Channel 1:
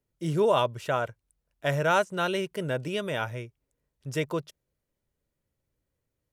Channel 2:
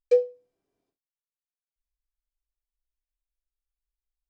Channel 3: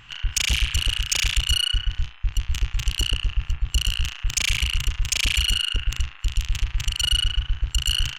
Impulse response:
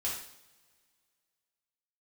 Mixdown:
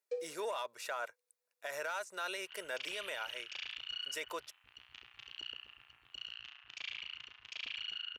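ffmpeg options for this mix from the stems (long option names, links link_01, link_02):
-filter_complex "[0:a]highpass=frequency=1500:poles=1,bandreject=frequency=3100:width=5.3,asoftclip=type=tanh:threshold=-22.5dB,volume=0.5dB[link_01];[1:a]volume=-18dB,asplit=2[link_02][link_03];[link_03]volume=-5.5dB[link_04];[2:a]lowpass=frequency=4100:width=0.5412,lowpass=frequency=4100:width=1.3066,adelay=2400,volume=-19dB,asplit=2[link_05][link_06];[link_06]volume=-19dB[link_07];[3:a]atrim=start_sample=2205[link_08];[link_04][link_07]amix=inputs=2:normalize=0[link_09];[link_09][link_08]afir=irnorm=-1:irlink=0[link_10];[link_01][link_02][link_05][link_10]amix=inputs=4:normalize=0,highpass=440,alimiter=level_in=6dB:limit=-24dB:level=0:latency=1:release=57,volume=-6dB"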